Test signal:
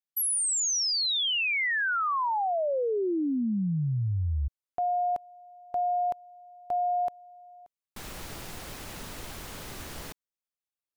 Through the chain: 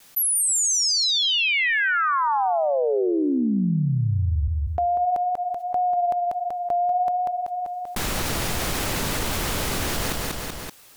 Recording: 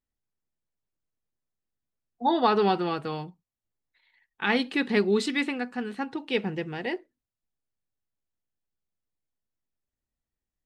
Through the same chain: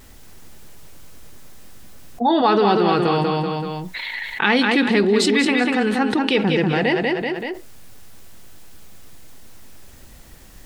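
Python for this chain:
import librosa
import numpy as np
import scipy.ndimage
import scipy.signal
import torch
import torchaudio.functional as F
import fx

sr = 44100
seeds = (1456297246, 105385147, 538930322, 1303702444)

p1 = fx.vibrato(x, sr, rate_hz=1.6, depth_cents=28.0)
p2 = p1 + fx.echo_feedback(p1, sr, ms=191, feedback_pct=28, wet_db=-7.0, dry=0)
p3 = fx.env_flatten(p2, sr, amount_pct=70)
y = p3 * 10.0 ** (3.5 / 20.0)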